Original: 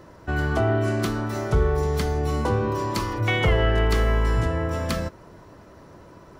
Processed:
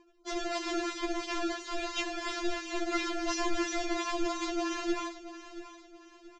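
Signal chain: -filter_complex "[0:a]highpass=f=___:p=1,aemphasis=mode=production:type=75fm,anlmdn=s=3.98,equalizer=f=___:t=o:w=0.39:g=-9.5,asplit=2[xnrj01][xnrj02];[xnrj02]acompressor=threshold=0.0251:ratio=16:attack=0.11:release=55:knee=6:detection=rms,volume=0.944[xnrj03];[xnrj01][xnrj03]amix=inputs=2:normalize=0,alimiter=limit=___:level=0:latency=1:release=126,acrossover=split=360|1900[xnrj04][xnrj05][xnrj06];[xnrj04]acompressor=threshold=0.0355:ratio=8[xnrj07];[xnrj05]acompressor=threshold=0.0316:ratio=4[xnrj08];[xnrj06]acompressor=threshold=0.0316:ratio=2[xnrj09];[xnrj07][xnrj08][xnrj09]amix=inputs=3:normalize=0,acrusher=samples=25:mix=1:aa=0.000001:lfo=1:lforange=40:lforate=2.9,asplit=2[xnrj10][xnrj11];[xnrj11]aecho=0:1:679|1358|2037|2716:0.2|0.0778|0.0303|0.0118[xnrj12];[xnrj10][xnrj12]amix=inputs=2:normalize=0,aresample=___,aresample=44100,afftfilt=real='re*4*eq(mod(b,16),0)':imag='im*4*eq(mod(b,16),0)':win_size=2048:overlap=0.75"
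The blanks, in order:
83, 210, 0.335, 16000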